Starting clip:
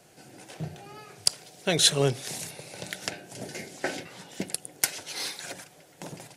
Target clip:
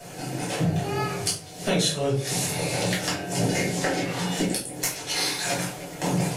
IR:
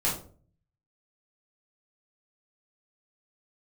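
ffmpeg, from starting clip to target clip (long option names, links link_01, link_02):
-filter_complex "[0:a]acompressor=threshold=-38dB:ratio=10[link_01];[1:a]atrim=start_sample=2205[link_02];[link_01][link_02]afir=irnorm=-1:irlink=0,volume=7.5dB"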